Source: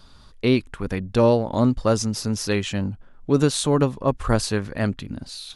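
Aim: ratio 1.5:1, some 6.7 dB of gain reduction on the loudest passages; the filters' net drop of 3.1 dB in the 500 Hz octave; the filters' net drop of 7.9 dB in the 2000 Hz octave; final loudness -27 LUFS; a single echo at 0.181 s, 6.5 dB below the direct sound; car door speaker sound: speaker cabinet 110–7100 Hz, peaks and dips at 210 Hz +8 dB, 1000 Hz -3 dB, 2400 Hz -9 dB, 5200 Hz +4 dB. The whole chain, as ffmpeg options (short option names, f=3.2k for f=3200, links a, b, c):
-af "equalizer=f=500:t=o:g=-3.5,equalizer=f=2k:t=o:g=-7,acompressor=threshold=-33dB:ratio=1.5,highpass=110,equalizer=f=210:t=q:w=4:g=8,equalizer=f=1k:t=q:w=4:g=-3,equalizer=f=2.4k:t=q:w=4:g=-9,equalizer=f=5.2k:t=q:w=4:g=4,lowpass=f=7.1k:w=0.5412,lowpass=f=7.1k:w=1.3066,aecho=1:1:181:0.473"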